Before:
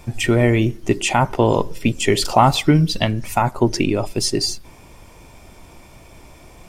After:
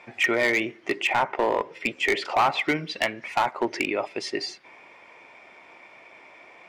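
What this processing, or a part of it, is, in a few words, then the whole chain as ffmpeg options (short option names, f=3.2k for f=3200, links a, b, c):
megaphone: -filter_complex "[0:a]highpass=490,lowpass=2.9k,equalizer=f=2.1k:t=o:w=0.57:g=10,asoftclip=type=hard:threshold=-13.5dB,asettb=1/sr,asplit=3[a][b][c];[a]atrim=end=1.074[d];[b]atrim=start=1.07:end=2.65,asetpts=PTS-STARTPTS,afade=t=in:d=0.004:c=qsin,afade=t=out:st=1.576:d=0.004:c=qsin,adynamicequalizer=threshold=0.0178:dfrequency=2800:dqfactor=0.7:tfrequency=2800:tqfactor=0.7:attack=5:release=100:ratio=0.375:range=3.5:mode=cutabove:tftype=highshelf[e];[c]atrim=start=2.646[f];[d][e]acrossfade=d=0.004:c1=hsin:c2=qsin[g];[g][f]acrossfade=d=0.004:c1=qsin:c2=hsin,volume=-2dB"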